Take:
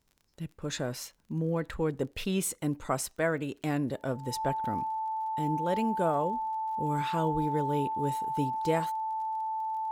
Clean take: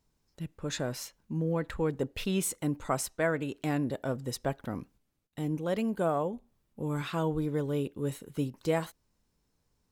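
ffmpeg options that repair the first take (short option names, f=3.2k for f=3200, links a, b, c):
-af "adeclick=t=4,bandreject=f=880:w=30"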